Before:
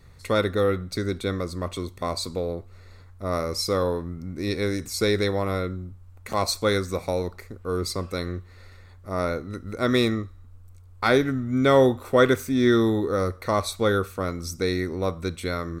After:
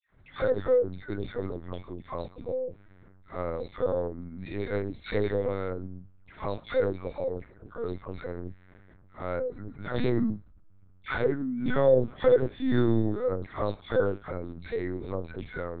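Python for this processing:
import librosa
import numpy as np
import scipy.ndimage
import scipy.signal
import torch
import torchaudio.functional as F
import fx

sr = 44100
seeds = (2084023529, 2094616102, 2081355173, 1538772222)

y = fx.dispersion(x, sr, late='lows', ms=128.0, hz=1200.0)
y = fx.hpss(y, sr, part='percussive', gain_db=-5)
y = fx.env_lowpass(y, sr, base_hz=2200.0, full_db=-19.5)
y = fx.small_body(y, sr, hz=(220.0, 510.0, 1500.0), ring_ms=65, db=9)
y = fx.lpc_vocoder(y, sr, seeds[0], excitation='pitch_kept', order=8)
y = F.gain(torch.from_numpy(y), -7.0).numpy()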